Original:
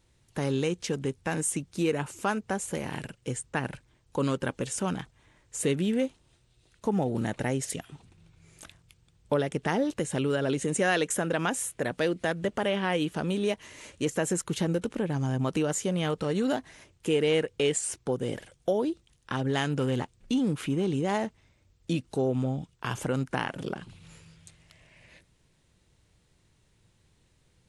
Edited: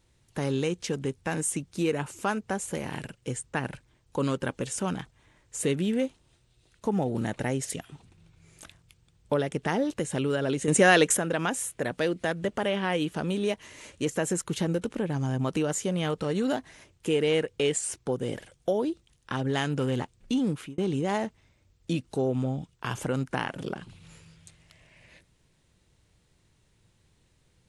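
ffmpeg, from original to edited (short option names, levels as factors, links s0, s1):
-filter_complex "[0:a]asplit=4[s0][s1][s2][s3];[s0]atrim=end=10.682[s4];[s1]atrim=start=10.678:end=11.172,asetpts=PTS-STARTPTS,volume=2.11[s5];[s2]atrim=start=11.168:end=20.78,asetpts=PTS-STARTPTS,afade=t=out:st=9.322:d=0.29[s6];[s3]atrim=start=20.78,asetpts=PTS-STARTPTS,afade=t=in:d=0.004:c=hsin[s7];[s4][s5]acrossfade=d=0.004:c1=hsin:c2=hsin[s8];[s6][s7]concat=n=2:v=0:a=1[s9];[s8][s9]acrossfade=d=0.004:c1=hsin:c2=hsin"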